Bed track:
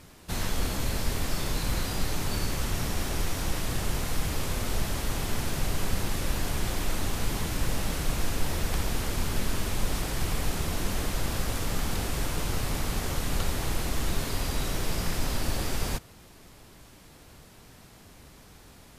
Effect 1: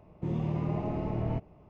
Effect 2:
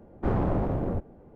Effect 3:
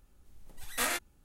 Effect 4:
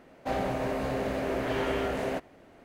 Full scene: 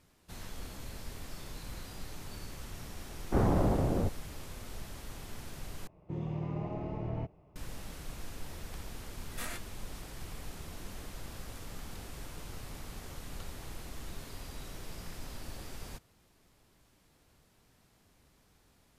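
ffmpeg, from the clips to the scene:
ffmpeg -i bed.wav -i cue0.wav -i cue1.wav -i cue2.wav -filter_complex "[0:a]volume=-15dB[link_01];[2:a]aeval=exprs='sgn(val(0))*max(abs(val(0))-0.00224,0)':channel_layout=same[link_02];[1:a]equalizer=frequency=230:width_type=o:width=0.22:gain=-7.5[link_03];[link_01]asplit=2[link_04][link_05];[link_04]atrim=end=5.874[link_06];[link_03]atrim=end=1.69,asetpts=PTS-STARTPTS,volume=-5dB[link_07];[link_05]atrim=start=7.556[link_08];[link_02]atrim=end=1.35,asetpts=PTS-STARTPTS,volume=-1dB,afade=type=in:duration=0.004:curve=hsin,afade=type=out:start_time=1.346:duration=0.004:curve=hsin,adelay=136269S[link_09];[3:a]atrim=end=1.24,asetpts=PTS-STARTPTS,volume=-11dB,afade=type=in:duration=0.004:curve=hsin,afade=type=out:start_time=1.236:duration=0.004:curve=hsin,adelay=8600[link_10];[link_06][link_07]acrossfade=duration=0.004:curve1=hsin:curve2=hsin[link_11];[link_11][link_08]acrossfade=duration=0.004:curve1=hsin:curve2=hsin[link_12];[link_12][link_09][link_10]amix=inputs=3:normalize=0" out.wav

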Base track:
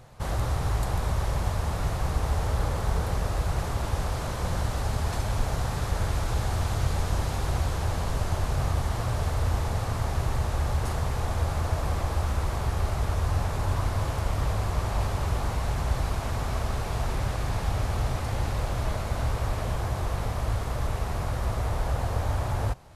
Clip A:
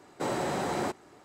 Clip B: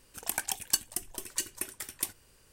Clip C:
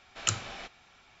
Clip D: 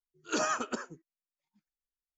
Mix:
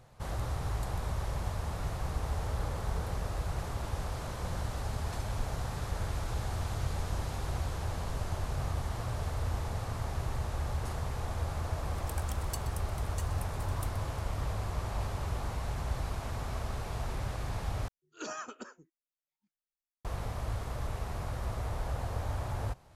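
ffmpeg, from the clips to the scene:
ffmpeg -i bed.wav -i cue0.wav -i cue1.wav -i cue2.wav -i cue3.wav -filter_complex "[0:a]volume=-7.5dB[link_01];[2:a]aecho=1:1:126:0.2[link_02];[link_01]asplit=2[link_03][link_04];[link_03]atrim=end=17.884[link_05];[4:a]atrim=end=2.17,asetpts=PTS-STARTPTS,volume=-10dB[link_06];[link_04]atrim=start=20.046[link_07];[link_02]atrim=end=2.52,asetpts=PTS-STARTPTS,volume=-14.5dB,afade=type=in:duration=0.004:curve=hsin,afade=type=out:start_time=2.516:duration=0.004:curve=hsin,adelay=11800[link_08];[link_05][link_06]acrossfade=duration=0.004:curve1=hsin:curve2=hsin[link_09];[link_09][link_07]acrossfade=duration=0.004:curve1=hsin:curve2=hsin[link_10];[link_10][link_08]amix=inputs=2:normalize=0" out.wav

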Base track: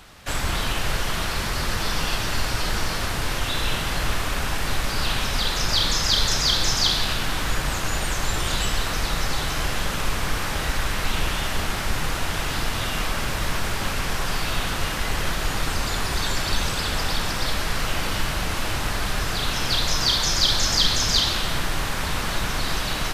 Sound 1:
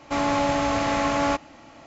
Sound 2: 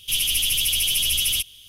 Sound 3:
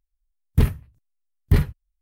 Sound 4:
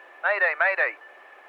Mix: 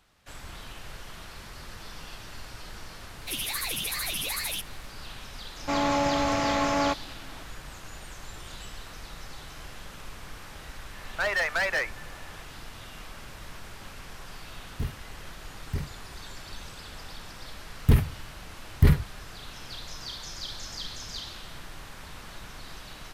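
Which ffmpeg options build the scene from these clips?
ffmpeg -i bed.wav -i cue0.wav -i cue1.wav -i cue2.wav -i cue3.wav -filter_complex "[3:a]asplit=2[link_01][link_02];[0:a]volume=-18dB[link_03];[2:a]aeval=exprs='val(0)*sin(2*PI*680*n/s+680*0.8/2.5*sin(2*PI*2.5*n/s))':channel_layout=same[link_04];[4:a]volume=21.5dB,asoftclip=hard,volume=-21.5dB[link_05];[link_02]alimiter=level_in=10dB:limit=-1dB:release=50:level=0:latency=1[link_06];[link_04]atrim=end=1.68,asetpts=PTS-STARTPTS,volume=-7.5dB,afade=type=in:duration=0.004:curve=hsin,afade=type=out:start_time=1.676:duration=0.004:curve=hsin,adelay=3190[link_07];[1:a]atrim=end=1.86,asetpts=PTS-STARTPTS,volume=-2.5dB,afade=type=in:duration=0.004:curve=hsin,afade=type=out:start_time=1.856:duration=0.004:curve=hsin,adelay=245637S[link_08];[link_05]atrim=end=1.48,asetpts=PTS-STARTPTS,volume=-1.5dB,afade=type=in:duration=0.004:curve=hsin,afade=type=out:start_time=1.476:duration=0.004:curve=hsin,adelay=10950[link_09];[link_01]atrim=end=2.01,asetpts=PTS-STARTPTS,volume=-15dB,afade=type=in:duration=0.004:curve=hsin,afade=type=out:start_time=2.006:duration=0.004:curve=hsin,adelay=14220[link_10];[link_06]atrim=end=2.01,asetpts=PTS-STARTPTS,volume=-7.5dB,afade=type=in:duration=0.004:curve=hsin,afade=type=out:start_time=2.006:duration=0.004:curve=hsin,adelay=17310[link_11];[link_03][link_07][link_08][link_09][link_10][link_11]amix=inputs=6:normalize=0" out.wav

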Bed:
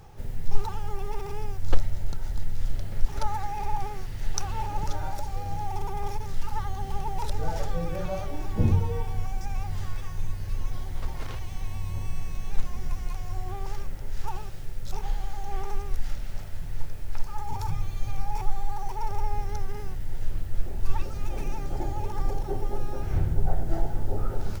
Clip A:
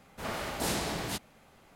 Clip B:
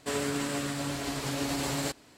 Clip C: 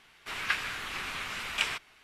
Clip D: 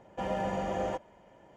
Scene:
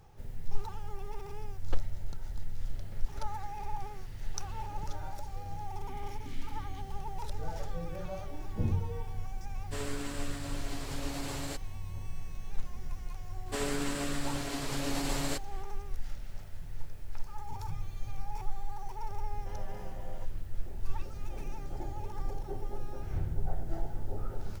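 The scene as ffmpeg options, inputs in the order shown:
ffmpeg -i bed.wav -i cue0.wav -i cue1.wav -i cue2.wav -i cue3.wav -filter_complex "[2:a]asplit=2[link_01][link_02];[0:a]volume=-8.5dB[link_03];[1:a]asplit=3[link_04][link_05][link_06];[link_04]bandpass=frequency=270:width_type=q:width=8,volume=0dB[link_07];[link_05]bandpass=frequency=2290:width_type=q:width=8,volume=-6dB[link_08];[link_06]bandpass=frequency=3010:width_type=q:width=8,volume=-9dB[link_09];[link_07][link_08][link_09]amix=inputs=3:normalize=0,atrim=end=1.75,asetpts=PTS-STARTPTS,volume=-6dB,afade=type=in:duration=0.004:curve=hsin,afade=type=out:start_time=1.746:duration=0.004:curve=hsin,adelay=5640[link_10];[link_01]atrim=end=2.17,asetpts=PTS-STARTPTS,volume=-8dB,afade=type=in:duration=0.1,afade=type=out:start_time=2.07:duration=0.1,adelay=9650[link_11];[link_02]atrim=end=2.17,asetpts=PTS-STARTPTS,volume=-3dB,afade=type=in:duration=0.004:curve=hsin,afade=type=out:start_time=2.166:duration=0.004:curve=hsin,adelay=13460[link_12];[4:a]atrim=end=1.56,asetpts=PTS-STARTPTS,volume=-16.5dB,afade=type=in:duration=0.004:curve=hsin,afade=type=out:start_time=1.556:duration=0.004:curve=hsin,adelay=19280[link_13];[link_03][link_10][link_11][link_12][link_13]amix=inputs=5:normalize=0" out.wav

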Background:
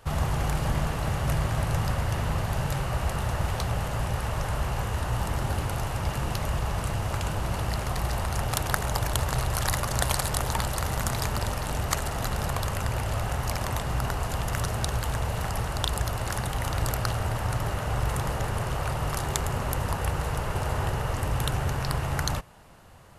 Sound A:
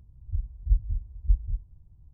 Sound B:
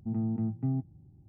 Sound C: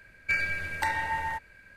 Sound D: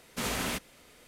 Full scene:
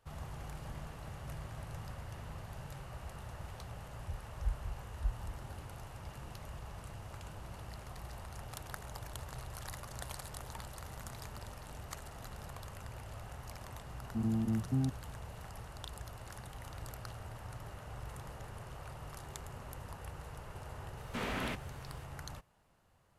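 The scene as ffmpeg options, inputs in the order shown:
ffmpeg -i bed.wav -i cue0.wav -i cue1.wav -i cue2.wav -i cue3.wav -filter_complex "[0:a]volume=-18.5dB[link_01];[1:a]highpass=41[link_02];[4:a]acrossover=split=3300[link_03][link_04];[link_04]acompressor=threshold=-54dB:ratio=4:attack=1:release=60[link_05];[link_03][link_05]amix=inputs=2:normalize=0[link_06];[link_02]atrim=end=2.13,asetpts=PTS-STARTPTS,volume=-10.5dB,afade=type=in:duration=0.004:curve=hsin,afade=type=out:start_time=2.126:duration=0.004:curve=hsin,adelay=3750[link_07];[2:a]atrim=end=1.28,asetpts=PTS-STARTPTS,volume=-2dB,afade=type=in:duration=0.004:curve=hsin,afade=type=out:start_time=1.276:duration=0.004:curve=hsin,adelay=14090[link_08];[link_06]atrim=end=1.07,asetpts=PTS-STARTPTS,volume=-3.5dB,afade=type=in:duration=0.004:curve=hsin,afade=type=out:start_time=1.066:duration=0.004:curve=hsin,adelay=20970[link_09];[link_01][link_07][link_08][link_09]amix=inputs=4:normalize=0" out.wav

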